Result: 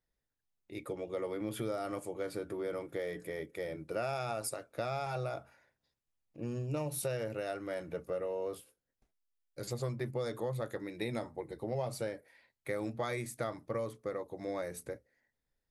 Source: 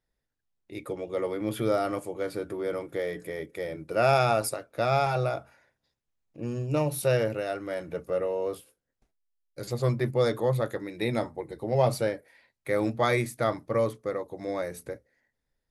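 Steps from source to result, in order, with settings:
dynamic equaliser 7,900 Hz, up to +5 dB, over −53 dBFS, Q 1.4
downward compressor 6 to 1, threshold −28 dBFS, peak gain reduction 11 dB
level −4.5 dB

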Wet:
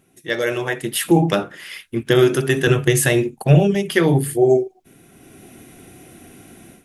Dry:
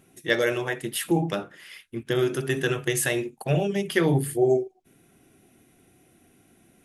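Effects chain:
0:02.67–0:03.75: low-shelf EQ 270 Hz +9 dB
automatic gain control gain up to 16.5 dB
level −1 dB

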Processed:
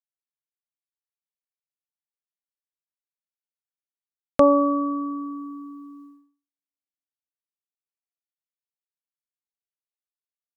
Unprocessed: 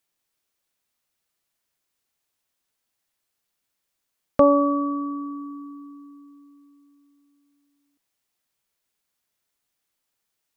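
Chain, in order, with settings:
noise gate −45 dBFS, range −57 dB

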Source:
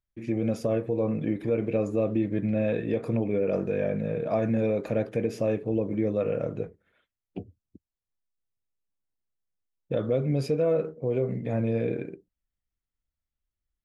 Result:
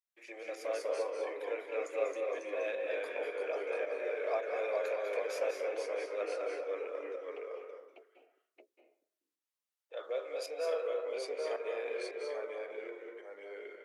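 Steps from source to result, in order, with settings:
Bessel high-pass filter 850 Hz, order 8
delay with pitch and tempo change per echo 159 ms, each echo −1 semitone, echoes 2
harmonic generator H 3 −17 dB, 5 −25 dB, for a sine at −14 dBFS
fake sidechain pumping 109 BPM, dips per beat 1, −12 dB, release 191 ms
convolution reverb RT60 0.55 s, pre-delay 189 ms, DRR 4 dB

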